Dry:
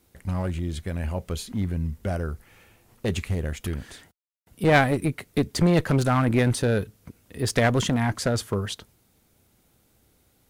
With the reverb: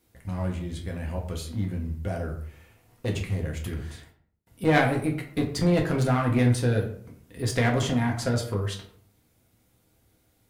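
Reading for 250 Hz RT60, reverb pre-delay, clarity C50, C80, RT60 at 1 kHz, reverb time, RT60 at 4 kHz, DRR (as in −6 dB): 0.70 s, 4 ms, 8.0 dB, 12.0 dB, 0.55 s, 0.60 s, 0.35 s, 0.0 dB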